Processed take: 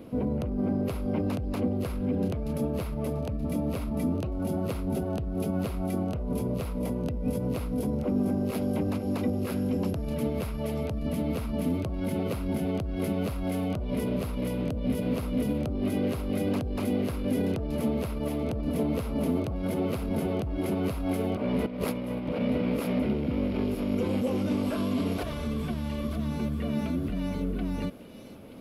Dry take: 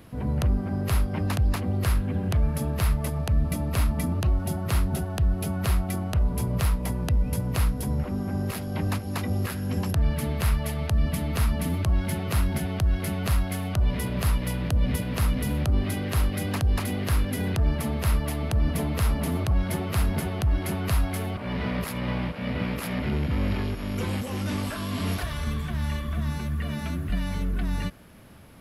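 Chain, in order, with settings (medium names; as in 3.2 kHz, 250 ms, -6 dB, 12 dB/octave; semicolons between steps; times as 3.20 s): peaking EQ 1.8 kHz -12.5 dB 0.41 oct; peak limiter -24 dBFS, peak gain reduction 11 dB; graphic EQ 250/500/2000/8000 Hz +11/+12/+7/-3 dB; feedback echo behind a high-pass 928 ms, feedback 33%, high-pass 3.3 kHz, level -6 dB; 21.66–22.40 s: compressor with a negative ratio -26 dBFS, ratio -0.5; trim -4.5 dB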